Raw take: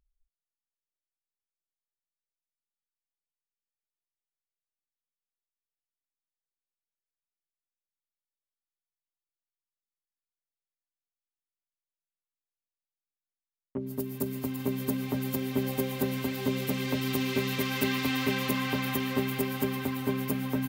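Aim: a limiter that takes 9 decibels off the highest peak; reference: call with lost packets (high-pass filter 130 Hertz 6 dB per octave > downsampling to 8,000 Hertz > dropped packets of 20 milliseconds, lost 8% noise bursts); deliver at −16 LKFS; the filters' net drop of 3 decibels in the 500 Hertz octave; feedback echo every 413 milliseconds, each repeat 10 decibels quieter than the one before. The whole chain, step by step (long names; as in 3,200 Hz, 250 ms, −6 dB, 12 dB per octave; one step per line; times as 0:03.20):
parametric band 500 Hz −3.5 dB
brickwall limiter −24 dBFS
high-pass filter 130 Hz 6 dB per octave
repeating echo 413 ms, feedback 32%, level −10 dB
downsampling to 8,000 Hz
dropped packets of 20 ms, lost 8% noise bursts
level +19 dB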